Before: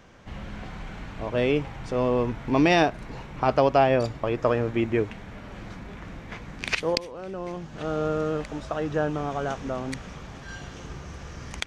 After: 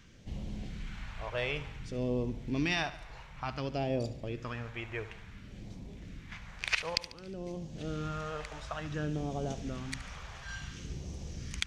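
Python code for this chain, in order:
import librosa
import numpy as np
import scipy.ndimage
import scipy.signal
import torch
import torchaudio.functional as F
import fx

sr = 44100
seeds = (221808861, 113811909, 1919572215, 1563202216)

p1 = fx.rider(x, sr, range_db=4, speed_s=2.0)
p2 = fx.phaser_stages(p1, sr, stages=2, low_hz=250.0, high_hz=1400.0, hz=0.56, feedback_pct=30)
p3 = p2 + fx.echo_feedback(p2, sr, ms=72, feedback_pct=52, wet_db=-15.0, dry=0)
y = F.gain(torch.from_numpy(p3), -6.5).numpy()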